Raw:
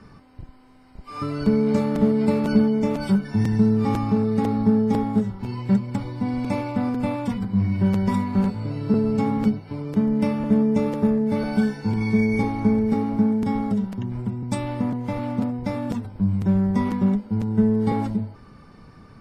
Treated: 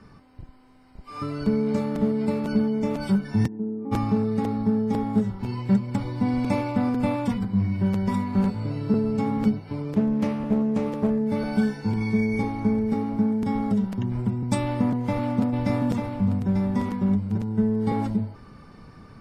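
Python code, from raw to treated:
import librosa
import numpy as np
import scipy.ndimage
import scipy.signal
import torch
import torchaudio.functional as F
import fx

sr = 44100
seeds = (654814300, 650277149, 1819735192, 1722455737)

y = fx.ladder_bandpass(x, sr, hz=350.0, resonance_pct=45, at=(3.46, 3.91), fade=0.02)
y = fx.doppler_dist(y, sr, depth_ms=0.37, at=(9.89, 11.1))
y = fx.echo_single(y, sr, ms=893, db=-3.5, at=(15.52, 17.37), fade=0.02)
y = fx.rider(y, sr, range_db=4, speed_s=0.5)
y = y * 10.0 ** (-2.0 / 20.0)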